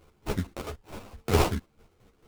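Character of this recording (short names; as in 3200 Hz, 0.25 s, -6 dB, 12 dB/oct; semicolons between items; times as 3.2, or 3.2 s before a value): a quantiser's noise floor 12-bit, dither none; chopped level 4.5 Hz, depth 60%, duty 40%; aliases and images of a low sample rate 1800 Hz, jitter 20%; a shimmering, thickened sound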